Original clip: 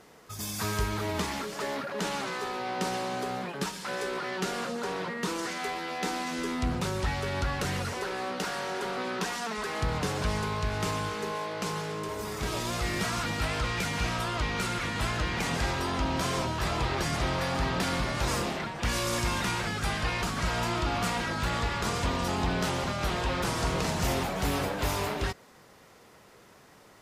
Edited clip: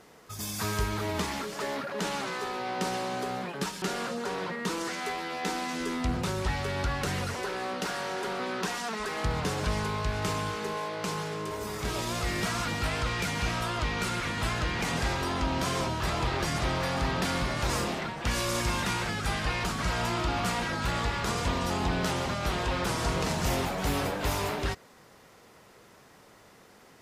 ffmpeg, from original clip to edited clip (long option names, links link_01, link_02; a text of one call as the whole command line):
ffmpeg -i in.wav -filter_complex "[0:a]asplit=2[link_01][link_02];[link_01]atrim=end=3.822[link_03];[link_02]atrim=start=4.398[link_04];[link_03][link_04]acrossfade=duration=0.004:curve1=hsin:curve2=hsin" out.wav